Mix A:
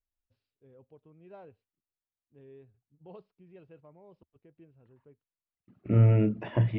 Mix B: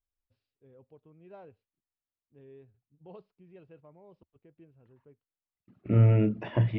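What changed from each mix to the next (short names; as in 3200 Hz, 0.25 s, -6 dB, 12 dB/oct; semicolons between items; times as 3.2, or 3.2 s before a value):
second voice: remove air absorption 93 m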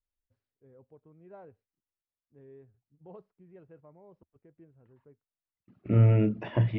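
first voice: add band shelf 3600 Hz -11 dB 1.3 oct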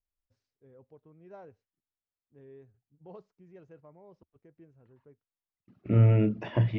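first voice: remove air absorption 310 m; second voice: remove LPF 4000 Hz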